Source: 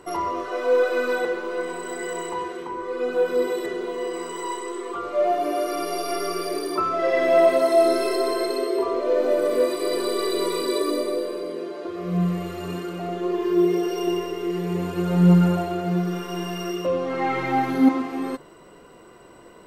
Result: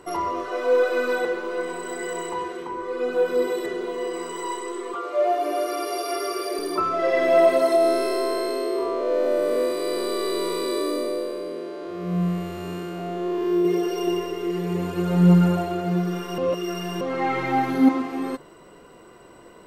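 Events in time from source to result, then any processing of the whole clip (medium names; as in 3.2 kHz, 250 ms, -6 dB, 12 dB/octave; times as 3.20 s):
4.94–6.59 s: high-pass 310 Hz 24 dB/octave
7.76–13.65 s: spectral blur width 143 ms
16.38–17.01 s: reverse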